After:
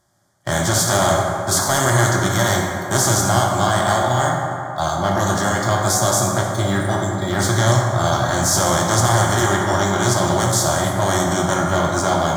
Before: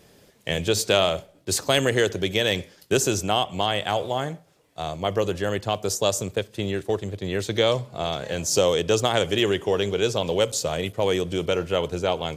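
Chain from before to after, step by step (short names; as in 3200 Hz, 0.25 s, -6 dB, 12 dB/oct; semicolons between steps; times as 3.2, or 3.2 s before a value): per-bin compression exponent 0.4; spectral noise reduction 26 dB; sample leveller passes 2; fixed phaser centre 1100 Hz, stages 4; reverb RT60 3.1 s, pre-delay 4 ms, DRR -1.5 dB; gain -4 dB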